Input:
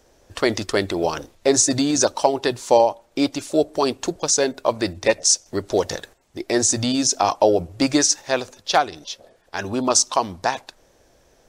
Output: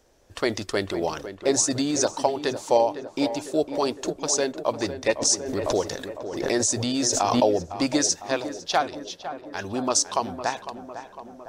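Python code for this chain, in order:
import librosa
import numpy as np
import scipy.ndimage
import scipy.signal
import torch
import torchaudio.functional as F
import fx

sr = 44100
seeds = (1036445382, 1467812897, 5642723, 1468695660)

y = fx.echo_tape(x, sr, ms=505, feedback_pct=69, wet_db=-9.0, lp_hz=1800.0, drive_db=7.0, wow_cents=19)
y = fx.pre_swell(y, sr, db_per_s=47.0, at=(5.2, 7.49), fade=0.02)
y = y * 10.0 ** (-5.0 / 20.0)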